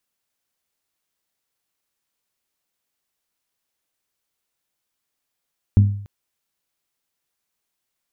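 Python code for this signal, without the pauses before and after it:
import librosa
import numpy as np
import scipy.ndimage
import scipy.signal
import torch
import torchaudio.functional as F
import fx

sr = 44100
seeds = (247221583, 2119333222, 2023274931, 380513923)

y = fx.strike_glass(sr, length_s=0.29, level_db=-6.5, body='bell', hz=101.0, decay_s=0.59, tilt_db=9.0, modes=5)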